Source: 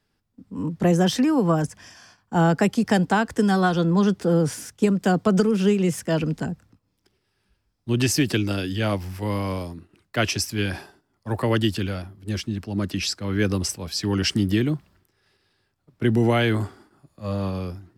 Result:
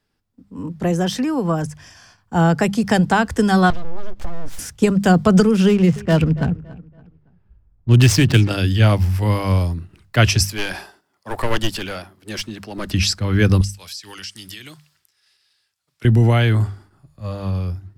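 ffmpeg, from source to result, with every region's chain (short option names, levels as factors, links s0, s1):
-filter_complex "[0:a]asettb=1/sr,asplit=3[s0][s1][s2];[s0]atrim=end=3.704[s3];[s1]atrim=start=3.7:end=4.59,asetpts=PTS-STARTPTS,afade=t=in:d=0.004:c=qsin,afade=t=out:st=0.886:d=0.004:c=qsin,lowpass=f=2300:p=1,acompressor=threshold=0.0251:ratio=12:attack=3.2:release=140:knee=1:detection=peak,aeval=exprs='abs(val(0))':c=same[s4];[s2]atrim=start=4.586[s5];[s3][s4]acrossfade=d=0.004:c1=hsin:c2=qsin[s6];[s6][s5]acrossfade=d=0.004:c1=qsin:c2=hsin,asettb=1/sr,asplit=3[s7][s8][s9];[s7]atrim=end=5.684[s10];[s8]atrim=start=5.68:end=8.5,asetpts=PTS-STARTPTS,afade=t=in:d=0.004:c=qsin,afade=t=out:st=2.816:d=0.004:c=qsin,adynamicsmooth=sensitivity=6.5:basefreq=1100,asplit=2[s11][s12];[s12]adelay=281,lowpass=f=3200:p=1,volume=0.112,asplit=2[s13][s14];[s14]adelay=281,lowpass=f=3200:p=1,volume=0.35,asplit=2[s15][s16];[s16]adelay=281,lowpass=f=3200:p=1,volume=0.35[s17];[s11][s13][s15][s17]amix=inputs=4:normalize=0,atrim=end_sample=124362[s18];[s9]atrim=start=8.496[s19];[s10][s18]acrossfade=d=0.004:c1=hsin:c2=qsin[s20];[s20][s19]acrossfade=d=0.004:c1=qsin:c2=hsin,asettb=1/sr,asplit=3[s21][s22][s23];[s21]atrim=end=10.454[s24];[s22]atrim=start=10.45:end=12.89,asetpts=PTS-STARTPTS,afade=t=in:d=0.004:c=qsin,afade=t=out:st=2.436:d=0.004:c=qsin,highpass=370,aeval=exprs='clip(val(0),-1,0.0355)':c=same[s25];[s23]atrim=start=12.886[s26];[s24][s25]acrossfade=d=0.004:c1=hsin:c2=qsin[s27];[s27][s26]acrossfade=d=0.004:c1=qsin:c2=hsin,asettb=1/sr,asplit=3[s28][s29][s30];[s28]atrim=end=13.614[s31];[s29]atrim=start=13.61:end=16.05,asetpts=PTS-STARTPTS,afade=t=in:d=0.004:c=qsin,afade=t=out:st=2.436:d=0.004:c=qsin,bandpass=f=4800:t=q:w=0.58,highshelf=f=6000:g=10.5,acompressor=threshold=0.0141:ratio=5:attack=3.2:release=140:knee=1:detection=peak[s32];[s30]atrim=start=16.046[s33];[s31][s32]acrossfade=d=0.004:c1=hsin:c2=qsin[s34];[s34][s33]acrossfade=d=0.004:c1=qsin:c2=hsin,bandreject=f=50:t=h:w=6,bandreject=f=100:t=h:w=6,bandreject=f=150:t=h:w=6,bandreject=f=200:t=h:w=6,asubboost=boost=5:cutoff=120,dynaudnorm=f=490:g=11:m=3.76"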